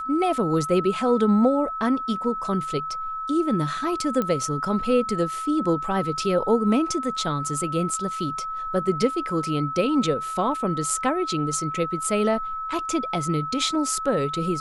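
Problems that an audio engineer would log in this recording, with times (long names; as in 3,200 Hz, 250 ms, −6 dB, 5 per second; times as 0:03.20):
whistle 1,300 Hz −28 dBFS
0:04.22: click −13 dBFS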